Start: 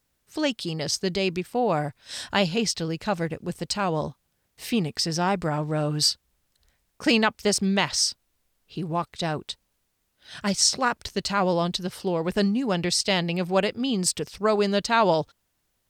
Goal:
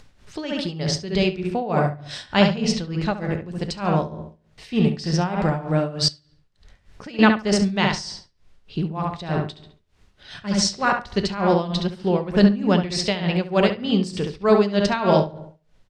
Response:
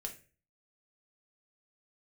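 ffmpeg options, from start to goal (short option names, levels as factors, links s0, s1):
-filter_complex "[0:a]asplit=2[s0][s1];[s1]adelay=69,lowpass=f=2700:p=1,volume=0.631,asplit=2[s2][s3];[s3]adelay=69,lowpass=f=2700:p=1,volume=0.45,asplit=2[s4][s5];[s5]adelay=69,lowpass=f=2700:p=1,volume=0.45,asplit=2[s6][s7];[s7]adelay=69,lowpass=f=2700:p=1,volume=0.45,asplit=2[s8][s9];[s9]adelay=69,lowpass=f=2700:p=1,volume=0.45,asplit=2[s10][s11];[s11]adelay=69,lowpass=f=2700:p=1,volume=0.45[s12];[s0][s2][s4][s6][s8][s10][s12]amix=inputs=7:normalize=0,asplit=2[s13][s14];[1:a]atrim=start_sample=2205[s15];[s14][s15]afir=irnorm=-1:irlink=0,volume=0.944[s16];[s13][s16]amix=inputs=2:normalize=0,tremolo=f=3.3:d=0.79,asettb=1/sr,asplit=3[s17][s18][s19];[s17]atrim=end=6.084[s20];[s18]atrim=start=6.08:end=7.19,asetpts=PTS-STARTPTS,afade=t=in:d=0.004:c=qsin,afade=t=out:st=1.106:d=0.004:c=qsin,acompressor=threshold=0.00891:ratio=2.5[s21];[s19]atrim=start=7.186[s22];[s20][s21]acrossfade=d=0.004:c1=hsin:c2=qsin[s23];[s23][s22]acrossfade=d=0.004:c1=qsin:c2=hsin,lowpass=4900,acompressor=mode=upward:threshold=0.00794:ratio=2.5,lowshelf=f=88:g=11.5"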